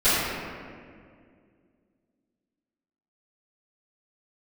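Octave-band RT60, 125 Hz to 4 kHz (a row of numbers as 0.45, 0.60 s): 2.6, 2.9, 2.4, 1.9, 1.8, 1.2 s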